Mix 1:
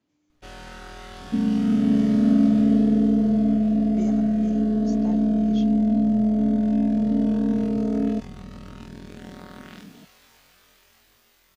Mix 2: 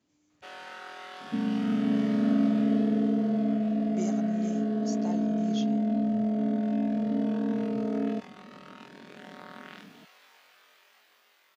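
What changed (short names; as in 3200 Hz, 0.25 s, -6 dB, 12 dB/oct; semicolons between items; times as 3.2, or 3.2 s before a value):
first sound: add BPF 530–3100 Hz; second sound: add low shelf 320 Hz -10.5 dB; master: remove air absorption 89 m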